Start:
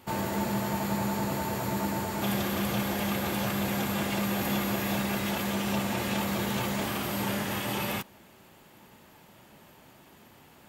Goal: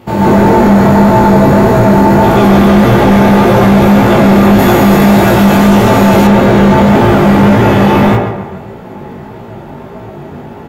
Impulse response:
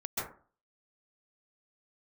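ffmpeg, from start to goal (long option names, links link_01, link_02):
-filter_complex "[0:a]firequalizer=gain_entry='entry(390,0);entry(1200,-7);entry(8200,-18)':delay=0.05:min_phase=1,asplit=2[link_01][link_02];[link_02]adelay=141,lowpass=frequency=3300:poles=1,volume=-8dB,asplit=2[link_03][link_04];[link_04]adelay=141,lowpass=frequency=3300:poles=1,volume=0.47,asplit=2[link_05][link_06];[link_06]adelay=141,lowpass=frequency=3300:poles=1,volume=0.47,asplit=2[link_07][link_08];[link_08]adelay=141,lowpass=frequency=3300:poles=1,volume=0.47,asplit=2[link_09][link_10];[link_10]adelay=141,lowpass=frequency=3300:poles=1,volume=0.47[link_11];[link_01][link_03][link_05][link_07][link_09][link_11]amix=inputs=6:normalize=0[link_12];[1:a]atrim=start_sample=2205[link_13];[link_12][link_13]afir=irnorm=-1:irlink=0,flanger=delay=17:depth=4.7:speed=1.7,asetnsamples=nb_out_samples=441:pad=0,asendcmd='4.59 highshelf g 9.5;6.27 highshelf g -3',highshelf=frequency=5400:gain=2,apsyclip=28dB,volume=-1.5dB"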